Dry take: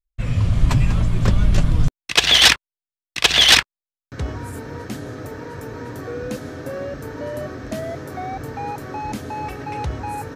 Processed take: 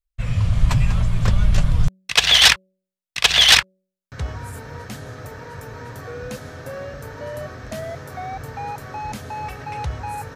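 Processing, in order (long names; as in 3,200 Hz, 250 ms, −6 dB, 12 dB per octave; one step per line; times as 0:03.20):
parametric band 310 Hz −12 dB 0.88 octaves
hum removal 187.9 Hz, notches 3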